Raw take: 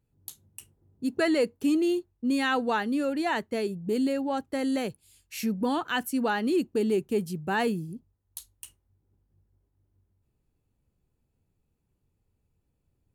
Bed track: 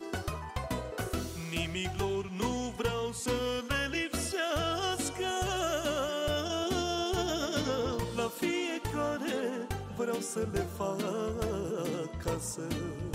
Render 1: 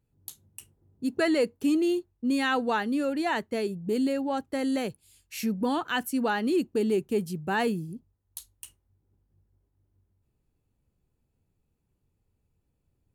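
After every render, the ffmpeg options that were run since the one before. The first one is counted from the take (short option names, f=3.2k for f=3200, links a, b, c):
-af anull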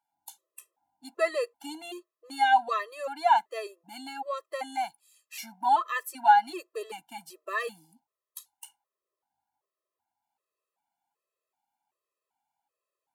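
-af "highpass=f=830:t=q:w=4.9,afftfilt=real='re*gt(sin(2*PI*1.3*pts/sr)*(1-2*mod(floor(b*sr/1024/340),2)),0)':imag='im*gt(sin(2*PI*1.3*pts/sr)*(1-2*mod(floor(b*sr/1024/340),2)),0)':win_size=1024:overlap=0.75"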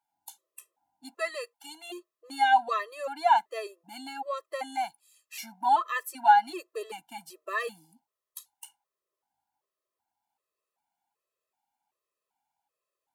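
-filter_complex "[0:a]asettb=1/sr,asplit=3[a][b][c];[a]atrim=end=1.154[d];[b]atrim=start=1.15:end=1.9,asetpts=PTS-STARTPTS,afade=t=in:d=0.004:c=qsin,afade=t=out:st=0.746:d=0.004:c=qsin,highpass=f=1.4k:p=1[e];[c]atrim=start=1.896[f];[d][e]acrossfade=d=0.004:c1=hsin:c2=qsin[g];[g][f]acrossfade=d=0.004:c1=qsin:c2=hsin"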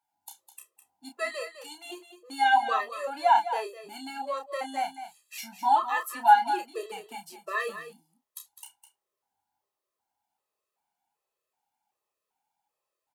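-filter_complex "[0:a]asplit=2[a][b];[b]adelay=30,volume=-6.5dB[c];[a][c]amix=inputs=2:normalize=0,asplit=2[d][e];[e]aecho=0:1:206:0.282[f];[d][f]amix=inputs=2:normalize=0"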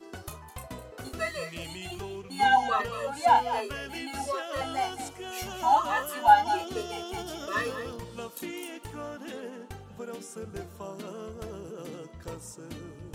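-filter_complex "[1:a]volume=-6.5dB[a];[0:a][a]amix=inputs=2:normalize=0"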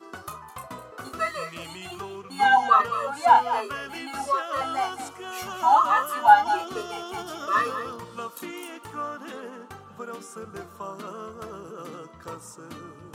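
-af "highpass=120,equalizer=f=1.2k:w=2.6:g=13.5"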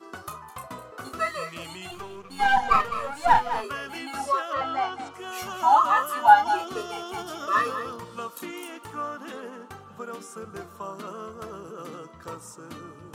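-filter_complex "[0:a]asettb=1/sr,asplit=3[a][b][c];[a]atrim=end=1.914[d];[b]atrim=start=1.91:end=3.64,asetpts=PTS-STARTPTS,afade=t=in:d=0.004:c=qsin,afade=t=out:st=1.726:d=0.004:c=qsin,aeval=exprs='if(lt(val(0),0),0.447*val(0),val(0))':c=same[e];[c]atrim=start=3.636[f];[d][e]acrossfade=d=0.004:c1=hsin:c2=qsin[g];[g][f]acrossfade=d=0.004:c1=qsin:c2=hsin,asettb=1/sr,asplit=3[h][i][j];[h]atrim=end=4.534[k];[i]atrim=start=4.53:end=5.14,asetpts=PTS-STARTPTS,afade=t=in:d=0.004:c=qsin,afade=t=out:st=0.606:d=0.004:c=qsin,lowpass=3.9k[l];[j]atrim=start=5.136[m];[k][l]acrossfade=d=0.004:c1=hsin:c2=qsin[n];[n][m]acrossfade=d=0.004:c1=qsin:c2=hsin"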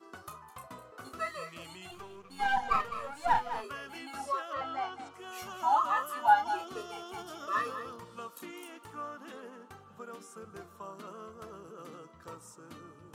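-af "volume=-8.5dB"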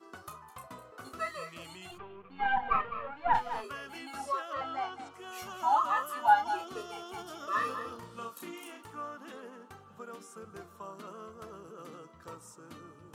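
-filter_complex "[0:a]asplit=3[a][b][c];[a]afade=t=out:st=1.97:d=0.02[d];[b]lowpass=f=2.9k:w=0.5412,lowpass=f=2.9k:w=1.3066,afade=t=in:st=1.97:d=0.02,afade=t=out:st=3.33:d=0.02[e];[c]afade=t=in:st=3.33:d=0.02[f];[d][e][f]amix=inputs=3:normalize=0,asettb=1/sr,asplit=3[g][h][i];[g]atrim=end=7.584[j];[h]atrim=start=7.58:end=8.83,asetpts=PTS-STARTPTS,afade=t=in:d=0.004:c=qsin,afade=t=out:st=1.246:d=0.004:c=qsin,asplit=2[k][l];[l]adelay=35,volume=-4.5dB[m];[k][m]amix=inputs=2:normalize=0,atrim=end_sample=55125[n];[i]atrim=start=8.826[o];[j][n]acrossfade=d=0.004:c1=hsin:c2=qsin[p];[p][o]acrossfade=d=0.004:c1=qsin:c2=hsin"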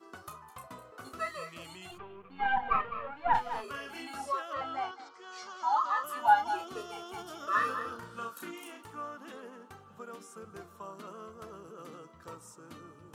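-filter_complex "[0:a]asettb=1/sr,asplit=3[a][b][c];[a]atrim=end=3.644[d];[b]atrim=start=3.64:end=4.14,asetpts=PTS-STARTPTS,afade=t=in:d=0.004:c=qsin,afade=t=out:st=0.496:d=0.004:c=qsin,asplit=2[e][f];[f]adelay=39,volume=-4dB[g];[e][g]amix=inputs=2:normalize=0,atrim=end_sample=22050[h];[c]atrim=start=4.136[i];[d][h]acrossfade=d=0.004:c1=hsin:c2=qsin[j];[j][i]acrossfade=d=0.004:c1=qsin:c2=hsin,asettb=1/sr,asplit=3[k][l][m];[k]atrim=end=4.914[n];[l]atrim=start=4.91:end=6.04,asetpts=PTS-STARTPTS,afade=t=in:d=0.004:c=qsin,afade=t=out:st=1.126:d=0.004:c=qsin,highpass=440,equalizer=f=670:t=q:w=4:g=-8,equalizer=f=2.7k:t=q:w=4:g=-10,equalizer=f=4.7k:t=q:w=4:g=7,lowpass=f=6.4k:w=0.5412,lowpass=f=6.4k:w=1.3066[o];[m]atrim=start=6.036[p];[n][o]acrossfade=d=0.004:c1=hsin:c2=qsin[q];[q][p]acrossfade=d=0.004:c1=qsin:c2=hsin,asettb=1/sr,asplit=3[r][s][t];[r]atrim=end=7.474[u];[s]atrim=start=7.47:end=8.51,asetpts=PTS-STARTPTS,afade=t=in:d=0.004:c=qsin,afade=t=out:st=1.036:d=0.004:c=qsin,equalizer=f=1.5k:t=o:w=0.23:g=14.5[v];[t]atrim=start=8.506[w];[u][v]acrossfade=d=0.004:c1=hsin:c2=qsin[x];[x][w]acrossfade=d=0.004:c1=qsin:c2=hsin"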